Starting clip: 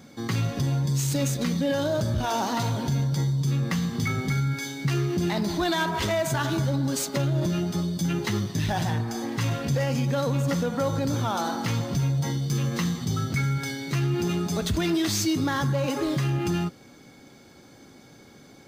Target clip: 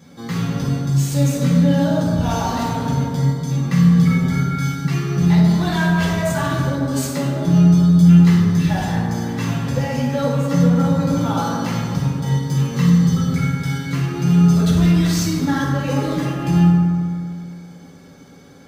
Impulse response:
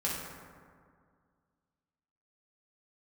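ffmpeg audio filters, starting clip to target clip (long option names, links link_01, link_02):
-filter_complex "[0:a]asettb=1/sr,asplit=3[link_01][link_02][link_03];[link_01]atrim=end=11.264[link_04];[link_02]atrim=start=11.26:end=13.35,asetpts=PTS-STARTPTS,afade=type=in:duration=0.004:curve=qsin,afade=type=out:start_time=2.086:duration=0.004:curve=qsin,aeval=exprs='0.178*(cos(1*acos(clip(val(0)/0.178,-1,1)))-cos(1*PI/2))+0.00398*(cos(4*acos(clip(val(0)/0.178,-1,1)))-cos(4*PI/2))+0.00224*(cos(6*acos(clip(val(0)/0.178,-1,1)))-cos(6*PI/2))':channel_layout=same[link_05];[link_03]atrim=start=13.346[link_06];[link_04][link_05]acrossfade=duration=0.004:curve1=hsin:curve2=qsin[link_07];[link_07][link_06]acrossfade=duration=0.004:curve1=qsin:curve2=hsin[link_08];[1:a]atrim=start_sample=2205[link_09];[link_08][link_09]afir=irnorm=-1:irlink=0,volume=-1.5dB"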